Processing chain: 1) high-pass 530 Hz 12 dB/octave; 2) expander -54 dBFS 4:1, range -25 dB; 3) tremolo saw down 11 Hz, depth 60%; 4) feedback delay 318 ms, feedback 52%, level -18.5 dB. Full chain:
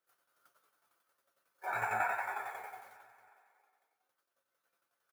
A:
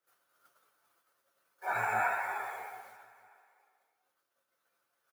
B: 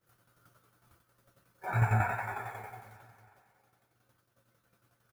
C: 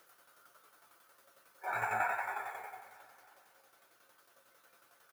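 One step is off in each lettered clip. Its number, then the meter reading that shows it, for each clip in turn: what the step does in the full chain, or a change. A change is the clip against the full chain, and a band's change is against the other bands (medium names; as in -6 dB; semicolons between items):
3, momentary loudness spread change +3 LU; 1, 125 Hz band +26.0 dB; 2, momentary loudness spread change +2 LU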